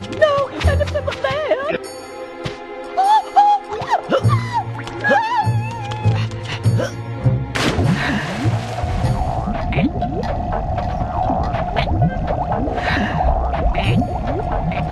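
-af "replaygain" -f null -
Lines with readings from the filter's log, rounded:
track_gain = -0.2 dB
track_peak = 0.537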